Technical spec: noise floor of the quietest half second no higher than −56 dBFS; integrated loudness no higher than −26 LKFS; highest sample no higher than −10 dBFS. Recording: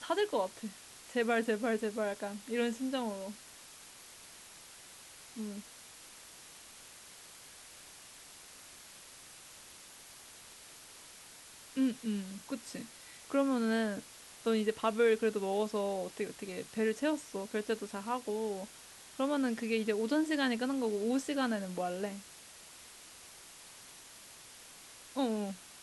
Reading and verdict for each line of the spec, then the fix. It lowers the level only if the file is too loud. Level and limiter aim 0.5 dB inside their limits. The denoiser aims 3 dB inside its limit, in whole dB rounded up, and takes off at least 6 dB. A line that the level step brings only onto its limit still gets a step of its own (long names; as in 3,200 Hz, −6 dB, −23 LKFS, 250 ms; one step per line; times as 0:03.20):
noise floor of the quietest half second −54 dBFS: out of spec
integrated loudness −34.5 LKFS: in spec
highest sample −18.5 dBFS: in spec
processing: broadband denoise 6 dB, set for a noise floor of −54 dBFS